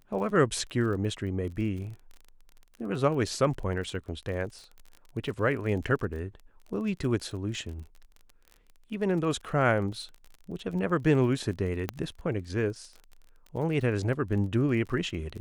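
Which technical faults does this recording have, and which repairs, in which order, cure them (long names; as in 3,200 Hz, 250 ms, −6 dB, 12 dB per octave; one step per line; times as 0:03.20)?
surface crackle 33 per second −38 dBFS
0:11.89: click −15 dBFS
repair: click removal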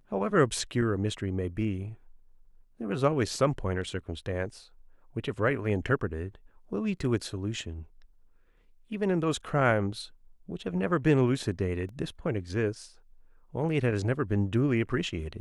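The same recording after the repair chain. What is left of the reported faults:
0:11.89: click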